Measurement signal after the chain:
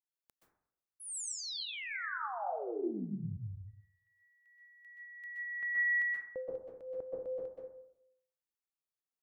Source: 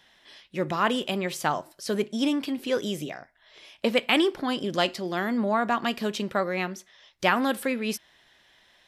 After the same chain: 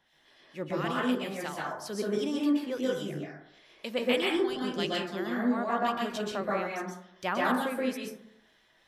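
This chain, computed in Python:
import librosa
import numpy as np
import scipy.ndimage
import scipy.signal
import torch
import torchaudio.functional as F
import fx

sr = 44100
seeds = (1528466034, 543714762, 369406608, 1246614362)

y = fx.harmonic_tremolo(x, sr, hz=3.0, depth_pct=70, crossover_hz=1700.0)
y = fx.high_shelf(y, sr, hz=11000.0, db=4.0)
y = fx.rev_plate(y, sr, seeds[0], rt60_s=0.73, hf_ratio=0.3, predelay_ms=115, drr_db=-4.5)
y = y * librosa.db_to_amplitude(-7.0)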